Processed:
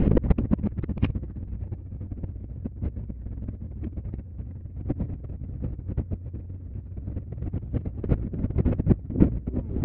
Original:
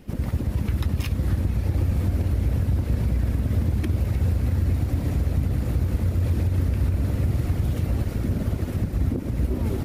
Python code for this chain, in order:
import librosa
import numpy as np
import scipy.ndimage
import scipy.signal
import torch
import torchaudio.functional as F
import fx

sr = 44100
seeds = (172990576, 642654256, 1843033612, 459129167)

y = scipy.signal.sosfilt(scipy.signal.butter(4, 2900.0, 'lowpass', fs=sr, output='sos'), x)
y = fx.tilt_shelf(y, sr, db=8.5, hz=790.0)
y = fx.over_compress(y, sr, threshold_db=-28.0, ratio=-0.5)
y = y * librosa.db_to_amplitude(3.5)